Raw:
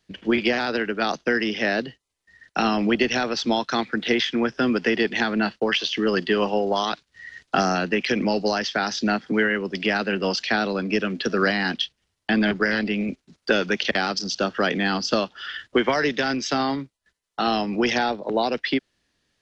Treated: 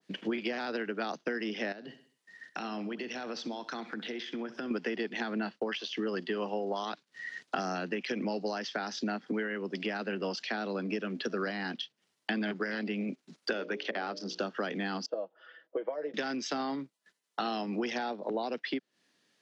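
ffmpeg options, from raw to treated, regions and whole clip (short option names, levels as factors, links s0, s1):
-filter_complex "[0:a]asettb=1/sr,asplit=3[s0][s1][s2];[s0]atrim=end=1.724[s3];[s1]atrim=start=1.72:end=4.71,asetpts=PTS-STARTPTS,afade=t=in:d=0.004:c=qsin,afade=t=out:st=2.986:d=0.004:c=qsin,acompressor=threshold=0.0224:ratio=8:attack=3.2:release=140:knee=1:detection=peak,aecho=1:1:65|130|195|260:0.168|0.0739|0.0325|0.0143,atrim=end_sample=131859[s4];[s2]atrim=start=4.706[s5];[s3][s4]acrossfade=d=0.004:c1=hsin:c2=qsin[s6];[s6][s5]acrossfade=d=0.004:c1=qsin:c2=hsin,asettb=1/sr,asplit=3[s7][s8][s9];[s7]atrim=end=13.534[s10];[s8]atrim=start=13.53:end=14.39,asetpts=PTS-STARTPTS,afade=t=in:d=0.004:c=qsin,afade=t=out:st=0.856:d=0.004:c=qsin,highpass=410,aemphasis=mode=reproduction:type=riaa,bandreject=f=60:t=h:w=6,bandreject=f=120:t=h:w=6,bandreject=f=180:t=h:w=6,bandreject=f=240:t=h:w=6,bandreject=f=300:t=h:w=6,bandreject=f=360:t=h:w=6,bandreject=f=420:t=h:w=6,bandreject=f=480:t=h:w=6,bandreject=f=540:t=h:w=6,bandreject=f=600:t=h:w=6[s11];[s9]atrim=start=14.386[s12];[s10][s11]acrossfade=d=0.004:c1=hsin:c2=qsin[s13];[s13][s12]acrossfade=d=0.004:c1=qsin:c2=hsin,asettb=1/sr,asplit=3[s14][s15][s16];[s14]atrim=end=15.064[s17];[s15]atrim=start=15.06:end=16.14,asetpts=PTS-STARTPTS,afade=t=in:d=0.004:c=qsin,afade=t=out:st=1.076:d=0.004:c=qsin,bandpass=f=550:t=q:w=4.4,aecho=1:1:6.2:0.64,atrim=end_sample=47628[s18];[s16]atrim=start=16.136[s19];[s17][s18]acrossfade=d=0.004:c1=hsin:c2=qsin[s20];[s20][s19]acrossfade=d=0.004:c1=qsin:c2=hsin,highpass=f=170:w=0.5412,highpass=f=170:w=1.3066,acompressor=threshold=0.0251:ratio=4,adynamicequalizer=threshold=0.00355:dfrequency=1500:dqfactor=0.7:tfrequency=1500:tqfactor=0.7:attack=5:release=100:ratio=0.375:range=2:mode=cutabove:tftype=highshelf"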